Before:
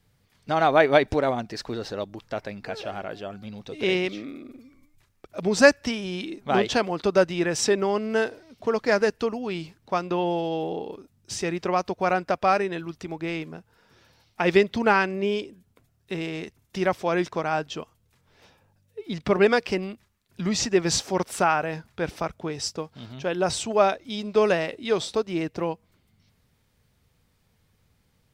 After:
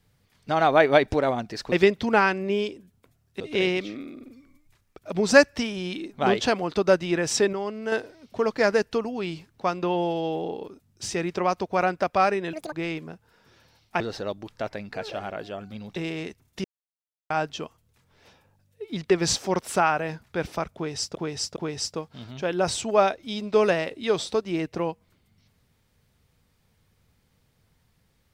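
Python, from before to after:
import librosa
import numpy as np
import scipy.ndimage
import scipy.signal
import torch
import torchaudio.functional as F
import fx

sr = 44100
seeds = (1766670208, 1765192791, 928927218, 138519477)

y = fx.edit(x, sr, fx.swap(start_s=1.72, length_s=1.96, other_s=14.45, other_length_s=1.68),
    fx.clip_gain(start_s=7.81, length_s=0.39, db=-6.0),
    fx.speed_span(start_s=12.81, length_s=0.36, speed=1.87),
    fx.silence(start_s=16.81, length_s=0.66),
    fx.cut(start_s=19.27, length_s=1.47),
    fx.repeat(start_s=22.38, length_s=0.41, count=3), tone=tone)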